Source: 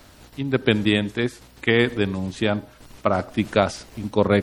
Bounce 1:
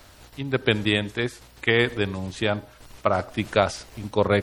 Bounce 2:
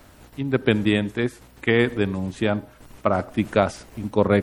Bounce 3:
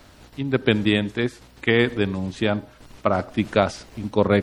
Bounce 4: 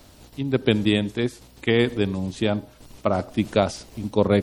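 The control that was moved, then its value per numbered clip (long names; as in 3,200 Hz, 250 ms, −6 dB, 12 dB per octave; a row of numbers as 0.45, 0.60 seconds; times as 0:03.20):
parametric band, centre frequency: 230, 4,500, 15,000, 1,600 Hertz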